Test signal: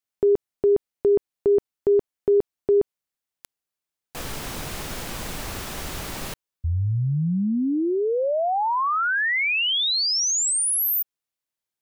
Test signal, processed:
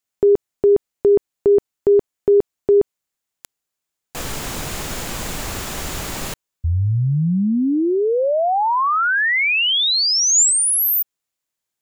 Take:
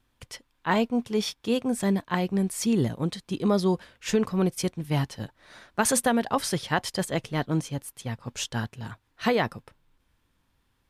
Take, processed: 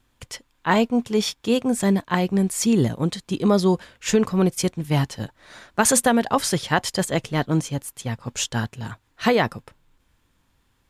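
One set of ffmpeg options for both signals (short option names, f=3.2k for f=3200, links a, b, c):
-af "equalizer=f=7.1k:w=5.4:g=5.5,volume=5dB"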